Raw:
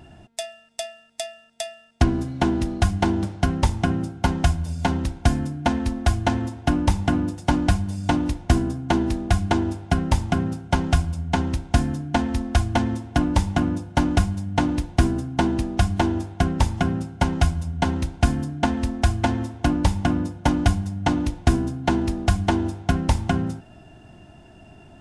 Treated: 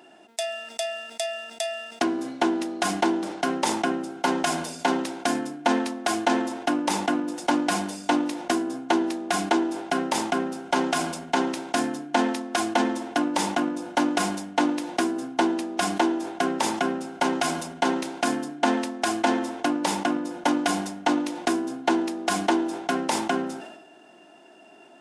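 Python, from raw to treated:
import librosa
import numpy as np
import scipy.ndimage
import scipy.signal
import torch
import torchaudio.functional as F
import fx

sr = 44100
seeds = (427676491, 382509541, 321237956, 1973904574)

y = scipy.signal.sosfilt(scipy.signal.butter(4, 300.0, 'highpass', fs=sr, output='sos'), x)
y = fx.sustainer(y, sr, db_per_s=54.0)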